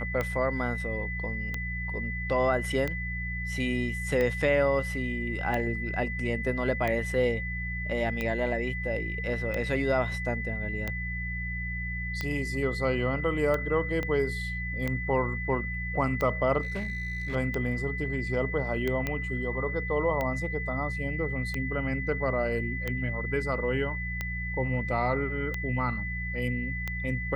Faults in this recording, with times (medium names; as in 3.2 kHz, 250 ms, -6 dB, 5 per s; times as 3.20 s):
hum 60 Hz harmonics 3 -35 dBFS
tick 45 rpm -17 dBFS
whine 2 kHz -34 dBFS
14.03 s: pop -19 dBFS
16.61–17.36 s: clipped -28 dBFS
19.07 s: pop -16 dBFS